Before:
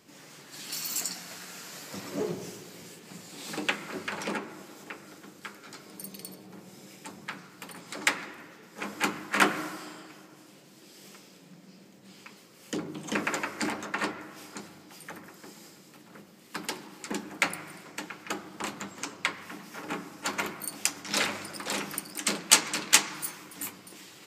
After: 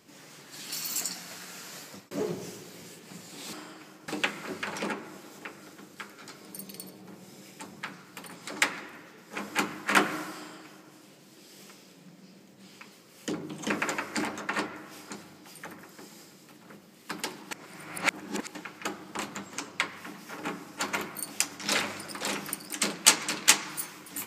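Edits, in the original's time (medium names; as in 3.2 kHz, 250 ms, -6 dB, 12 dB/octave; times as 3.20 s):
1.79–2.11 s: fade out
9.82–10.37 s: copy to 3.53 s
16.96–18.00 s: reverse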